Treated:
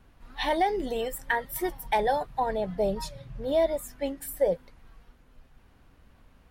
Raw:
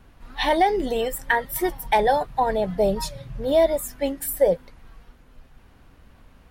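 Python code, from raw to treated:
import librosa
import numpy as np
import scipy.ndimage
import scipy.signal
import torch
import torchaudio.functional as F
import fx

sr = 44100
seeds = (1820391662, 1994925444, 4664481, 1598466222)

y = fx.high_shelf(x, sr, hz=8000.0, db=-5.0, at=(2.46, 4.52))
y = y * 10.0 ** (-6.0 / 20.0)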